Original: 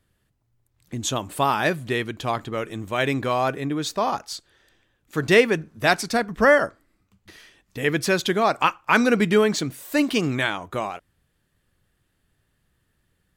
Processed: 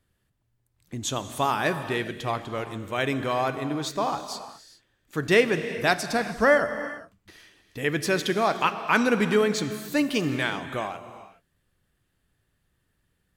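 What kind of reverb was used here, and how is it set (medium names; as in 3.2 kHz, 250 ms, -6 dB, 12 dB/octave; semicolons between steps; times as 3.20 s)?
gated-style reverb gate 440 ms flat, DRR 9.5 dB; trim -3.5 dB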